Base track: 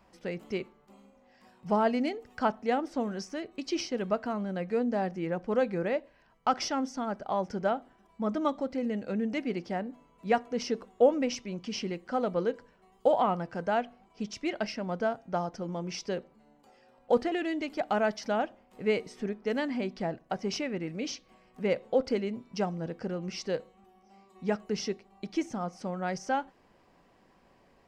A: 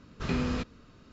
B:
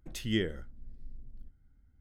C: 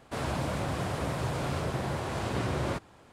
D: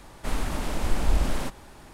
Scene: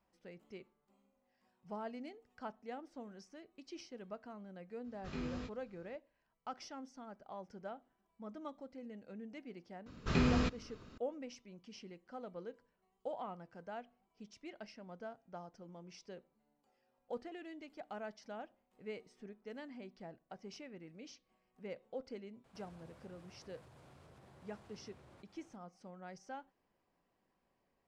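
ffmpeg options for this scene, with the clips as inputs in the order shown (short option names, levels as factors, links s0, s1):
-filter_complex "[1:a]asplit=2[s0][s1];[0:a]volume=0.126[s2];[s0]asplit=2[s3][s4];[s4]adelay=20,volume=0.631[s5];[s3][s5]amix=inputs=2:normalize=0[s6];[3:a]acompressor=threshold=0.00501:ratio=6:attack=3.2:release=140:knee=1:detection=peak[s7];[s6]atrim=end=1.12,asetpts=PTS-STARTPTS,volume=0.178,afade=t=in:d=0.004:c=hsin,afade=t=out:st=1.116:d=0.004:c=hsin,adelay=4840[s8];[s1]atrim=end=1.12,asetpts=PTS-STARTPTS,volume=0.891,afade=t=in:d=0.004:c=hsin,afade=t=out:st=1.116:d=0.004:c=hsin,adelay=434826S[s9];[s7]atrim=end=3.12,asetpts=PTS-STARTPTS,volume=0.224,afade=t=in:d=0.004:c=hsin,afade=t=out:st=3.116:d=0.004:c=hsin,adelay=989604S[s10];[s2][s8][s9][s10]amix=inputs=4:normalize=0"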